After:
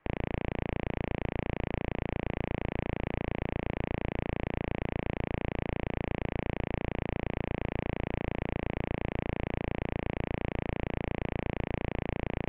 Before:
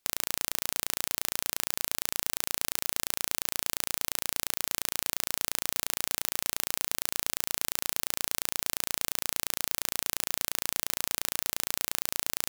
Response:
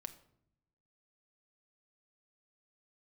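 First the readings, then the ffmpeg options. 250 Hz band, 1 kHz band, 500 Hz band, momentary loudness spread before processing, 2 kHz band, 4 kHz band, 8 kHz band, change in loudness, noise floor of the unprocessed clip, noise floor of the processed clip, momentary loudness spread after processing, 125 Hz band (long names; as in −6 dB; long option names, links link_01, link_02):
+14.0 dB, +2.0 dB, +10.5 dB, 0 LU, −2.0 dB, −16.0 dB, below −40 dB, −5.0 dB, −75 dBFS, −69 dBFS, 0 LU, +17.0 dB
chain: -filter_complex "[0:a]highpass=210,asplit=2[link_01][link_02];[link_02]highpass=frequency=720:poles=1,volume=24dB,asoftclip=type=tanh:threshold=-1dB[link_03];[link_01][link_03]amix=inputs=2:normalize=0,lowpass=frequency=1100:poles=1,volume=-6dB,asplit=2[link_04][link_05];[link_05]aeval=exprs='(mod(4.73*val(0)+1,2)-1)/4.73':channel_layout=same,volume=-5dB[link_06];[link_04][link_06]amix=inputs=2:normalize=0,highpass=frequency=290:width_type=q:width=0.5412,highpass=frequency=290:width_type=q:width=1.307,lowpass=frequency=2700:width_type=q:width=0.5176,lowpass=frequency=2700:width_type=q:width=0.7071,lowpass=frequency=2700:width_type=q:width=1.932,afreqshift=-390"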